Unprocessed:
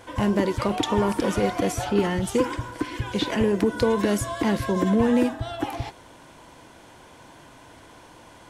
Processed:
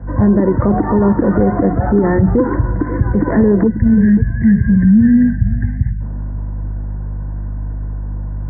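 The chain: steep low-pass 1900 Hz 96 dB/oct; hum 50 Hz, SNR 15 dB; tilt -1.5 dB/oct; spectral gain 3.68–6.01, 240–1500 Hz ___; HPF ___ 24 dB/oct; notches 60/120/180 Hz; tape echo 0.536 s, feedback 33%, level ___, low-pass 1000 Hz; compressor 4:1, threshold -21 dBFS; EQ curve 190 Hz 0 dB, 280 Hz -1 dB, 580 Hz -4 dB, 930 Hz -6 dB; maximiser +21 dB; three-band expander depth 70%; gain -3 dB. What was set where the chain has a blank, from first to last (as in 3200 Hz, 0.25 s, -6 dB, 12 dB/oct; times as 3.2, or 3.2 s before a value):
-28 dB, 49 Hz, -18 dB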